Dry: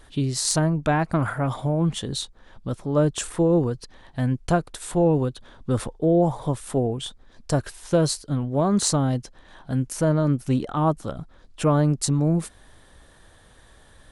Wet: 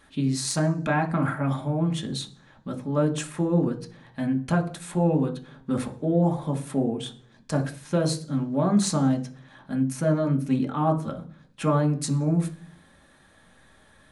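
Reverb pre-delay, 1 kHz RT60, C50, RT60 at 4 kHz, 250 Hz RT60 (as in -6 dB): 3 ms, 0.40 s, 14.0 dB, 0.50 s, 0.70 s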